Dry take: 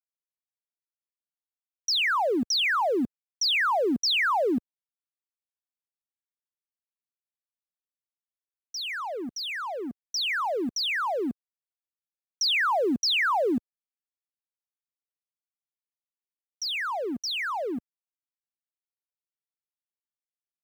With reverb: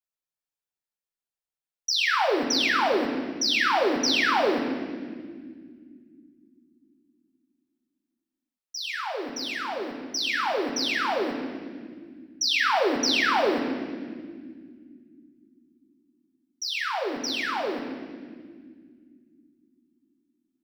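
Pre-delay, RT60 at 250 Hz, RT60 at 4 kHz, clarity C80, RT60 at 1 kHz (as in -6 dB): 5 ms, 4.1 s, 1.6 s, 6.5 dB, 1.5 s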